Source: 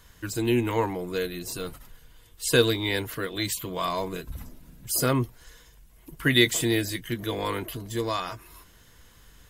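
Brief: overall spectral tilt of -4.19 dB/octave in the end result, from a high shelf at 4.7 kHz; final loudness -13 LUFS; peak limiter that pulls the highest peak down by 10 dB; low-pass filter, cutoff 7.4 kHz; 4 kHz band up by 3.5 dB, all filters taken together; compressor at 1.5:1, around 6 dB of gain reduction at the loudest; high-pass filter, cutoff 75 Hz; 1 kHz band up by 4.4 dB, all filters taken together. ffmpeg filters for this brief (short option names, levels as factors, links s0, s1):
-af "highpass=75,lowpass=7400,equalizer=f=1000:t=o:g=5,equalizer=f=4000:t=o:g=6.5,highshelf=f=4700:g=-6,acompressor=threshold=0.0355:ratio=1.5,volume=8.91,alimiter=limit=0.891:level=0:latency=1"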